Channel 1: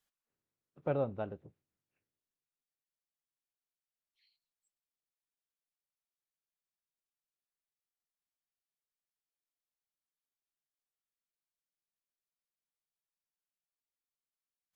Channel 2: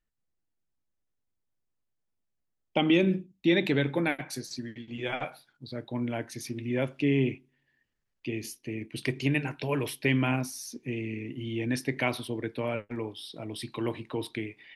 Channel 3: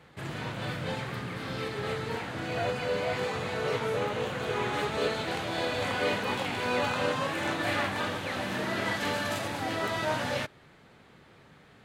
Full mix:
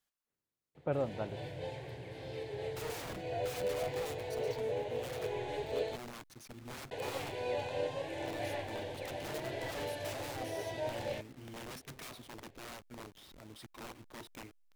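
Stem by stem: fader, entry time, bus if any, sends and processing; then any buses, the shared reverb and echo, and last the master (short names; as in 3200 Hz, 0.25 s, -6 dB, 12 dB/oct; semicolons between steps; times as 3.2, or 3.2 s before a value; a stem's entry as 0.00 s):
-1.0 dB, 0.00 s, no send, dry
-13.5 dB, 0.00 s, no send, level-crossing sampler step -38 dBFS; wrapped overs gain 27.5 dB; vibrato 0.36 Hz 7.5 cents
-4.0 dB, 0.75 s, muted 5.96–6.91, no send, high shelf 2500 Hz -10 dB; fixed phaser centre 520 Hz, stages 4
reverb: off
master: dry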